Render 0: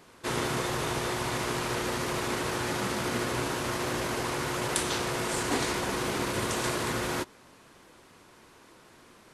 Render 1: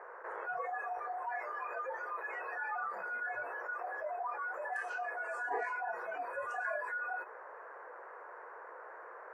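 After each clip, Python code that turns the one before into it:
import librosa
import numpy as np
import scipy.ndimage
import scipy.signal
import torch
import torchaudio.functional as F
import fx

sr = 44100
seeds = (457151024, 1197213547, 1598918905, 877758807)

y = fx.noise_reduce_blind(x, sr, reduce_db=28)
y = scipy.signal.sosfilt(scipy.signal.ellip(3, 1.0, 40, [470.0, 1700.0], 'bandpass', fs=sr, output='sos'), y)
y = fx.env_flatten(y, sr, amount_pct=70)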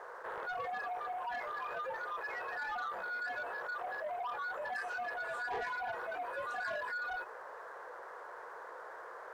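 y = fx.leveller(x, sr, passes=2)
y = y * librosa.db_to_amplitude(-6.0)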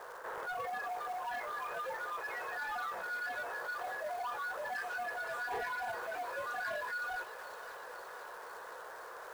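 y = fx.dmg_crackle(x, sr, seeds[0], per_s=440.0, level_db=-48.0)
y = fx.quant_companded(y, sr, bits=6)
y = fx.echo_wet_highpass(y, sr, ms=514, feedback_pct=70, hz=2500.0, wet_db=-6.5)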